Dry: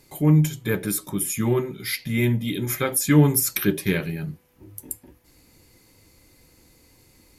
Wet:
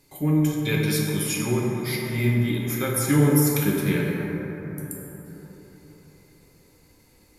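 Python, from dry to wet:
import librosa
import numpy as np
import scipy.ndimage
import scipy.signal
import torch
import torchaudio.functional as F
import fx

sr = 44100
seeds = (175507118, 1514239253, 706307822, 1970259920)

y = fx.band_shelf(x, sr, hz=3600.0, db=11.5, octaves=1.7, at=(0.63, 1.36))
y = fx.rev_plate(y, sr, seeds[0], rt60_s=4.1, hf_ratio=0.3, predelay_ms=0, drr_db=-3.0)
y = y * 10.0 ** (-5.5 / 20.0)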